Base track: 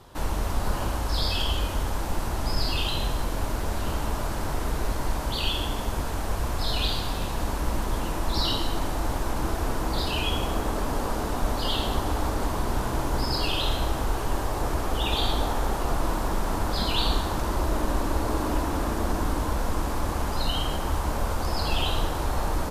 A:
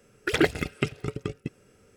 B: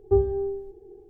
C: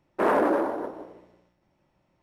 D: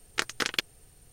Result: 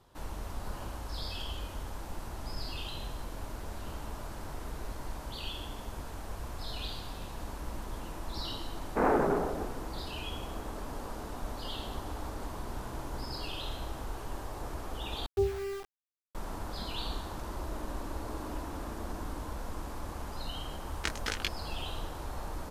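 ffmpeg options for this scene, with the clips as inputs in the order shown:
-filter_complex "[0:a]volume=-12.5dB[a];[3:a]highpass=f=410:t=q:w=0.5412,highpass=f=410:t=q:w=1.307,lowpass=f=2.8k:t=q:w=0.5176,lowpass=f=2.8k:t=q:w=0.7071,lowpass=f=2.8k:t=q:w=1.932,afreqshift=-160[b];[2:a]aeval=exprs='val(0)*gte(abs(val(0)),0.0299)':c=same[c];[4:a]flanger=delay=17.5:depth=2.7:speed=2.3[d];[a]asplit=2[e][f];[e]atrim=end=15.264[g];[c]atrim=end=1.09,asetpts=PTS-STARTPTS,volume=-8.5dB[h];[f]atrim=start=16.346[i];[b]atrim=end=2.22,asetpts=PTS-STARTPTS,volume=-3dB,afade=t=in:d=0.004:c=hsin,afade=t=out:st=2.216:d=0.004:c=hsin,adelay=8770[j];[d]atrim=end=1.12,asetpts=PTS-STARTPTS,volume=-3dB,afade=t=in:d=0.004:c=hsin,afade=t=out:st=1.116:d=0.004:c=hsin,adelay=20860[k];[g][h]acrossfade=d=0.004:c1=hsin:c2=hsin[l];[l][i]acrossfade=d=0.004:c1=hsin:c2=hsin[m];[m][j][k]amix=inputs=3:normalize=0"

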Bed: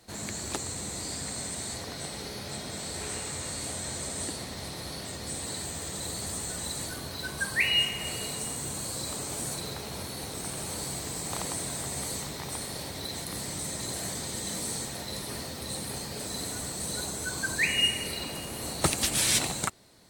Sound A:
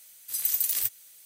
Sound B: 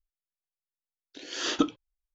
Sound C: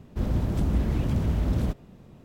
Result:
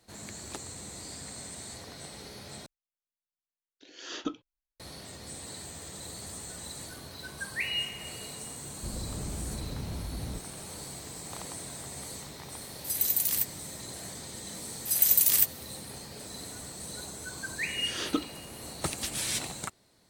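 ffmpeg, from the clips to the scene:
-filter_complex "[2:a]asplit=2[a][b];[1:a]asplit=2[c][d];[0:a]volume=-7dB[e];[3:a]acompressor=threshold=-25dB:ratio=6:attack=3.2:release=140:knee=1:detection=peak[f];[d]dynaudnorm=f=100:g=5:m=11.5dB[g];[e]asplit=2[h][i];[h]atrim=end=2.664[j];[a]atrim=end=2.14,asetpts=PTS-STARTPTS,volume=-9.5dB[k];[i]atrim=start=4.796[l];[f]atrim=end=2.24,asetpts=PTS-STARTPTS,volume=-8dB,afade=t=in:d=0.004:c=hsin,afade=t=out:st=2.236:d=0.004:c=hsin,adelay=8670[m];[c]atrim=end=1.25,asetpts=PTS-STARTPTS,volume=-1dB,afade=t=in:d=0.004:c=hsin,afade=t=out:st=1.246:d=0.004:c=hsin,adelay=12560[n];[g]atrim=end=1.25,asetpts=PTS-STARTPTS,volume=-4.5dB,afade=t=in:d=0.004:c=hsin,afade=t=out:st=1.246:d=0.004:c=hsin,adelay=14570[o];[b]atrim=end=2.14,asetpts=PTS-STARTPTS,volume=-5dB,afade=t=in:d=0.004:c=hsin,afade=t=out:st=2.136:d=0.004:c=hsin,adelay=16540[p];[j][k]acrossfade=d=0.004:c1=hsin:c2=hsin[q];[q][l]acrossfade=d=0.004:c1=hsin:c2=hsin[r];[r][m][n][o][p]amix=inputs=5:normalize=0"

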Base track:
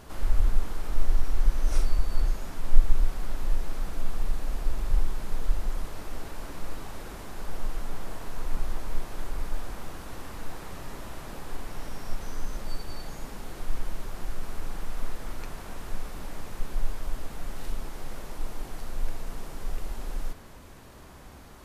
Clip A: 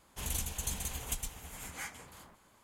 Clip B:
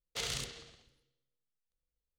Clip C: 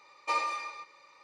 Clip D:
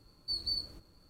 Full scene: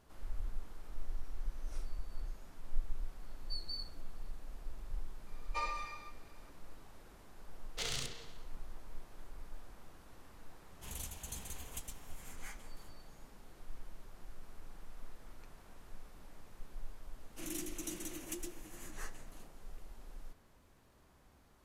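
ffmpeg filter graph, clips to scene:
-filter_complex "[1:a]asplit=2[a][b];[0:a]volume=-17.5dB[c];[b]afreqshift=-380[d];[4:a]atrim=end=1.09,asetpts=PTS-STARTPTS,volume=-9.5dB,afade=t=in:d=0.004:c=hsin,afade=t=out:st=1.086:d=0.004:c=hsin,adelay=3220[e];[3:a]atrim=end=1.23,asetpts=PTS-STARTPTS,volume=-8.5dB,afade=t=in:d=0.004:c=hsin,afade=t=out:st=1.226:d=0.004:c=hsin,adelay=5270[f];[2:a]atrim=end=2.18,asetpts=PTS-STARTPTS,volume=-2dB,afade=t=in:d=0.004:c=hsin,afade=t=out:st=2.176:d=0.004:c=hsin,adelay=336042S[g];[a]atrim=end=2.63,asetpts=PTS-STARTPTS,volume=-9dB,afade=t=in:d=0.004:c=hsin,afade=t=out:st=2.626:d=0.004:c=hsin,adelay=10650[h];[d]atrim=end=2.63,asetpts=PTS-STARTPTS,volume=-7dB,afade=t=in:d=0.004:c=hsin,afade=t=out:st=2.626:d=0.004:c=hsin,adelay=17200[i];[c][e][f][g][h][i]amix=inputs=6:normalize=0"

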